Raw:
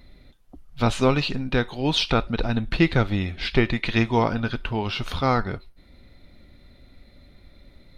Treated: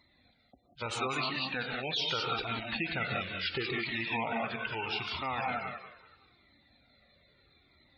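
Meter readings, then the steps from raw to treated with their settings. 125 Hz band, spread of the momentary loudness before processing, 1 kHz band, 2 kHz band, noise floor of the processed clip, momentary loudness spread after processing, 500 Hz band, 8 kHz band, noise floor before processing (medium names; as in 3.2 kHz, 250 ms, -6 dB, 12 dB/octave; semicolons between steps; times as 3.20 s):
-18.5 dB, 6 LU, -7.5 dB, -5.0 dB, -68 dBFS, 5 LU, -13.0 dB, no reading, -53 dBFS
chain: rattle on loud lows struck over -23 dBFS, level -21 dBFS; harmonic-percussive split harmonic -5 dB; thinning echo 189 ms, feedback 36%, high-pass 340 Hz, level -8 dB; gated-style reverb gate 210 ms rising, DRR 3 dB; in parallel at -6 dB: saturation -18 dBFS, distortion -11 dB; on the sum: high-pass 95 Hz 12 dB/octave; bass shelf 410 Hz -10.5 dB; spectral gate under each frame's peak -20 dB strong; peak limiter -14.5 dBFS, peak gain reduction 7 dB; Shepard-style flanger falling 0.77 Hz; trim -3.5 dB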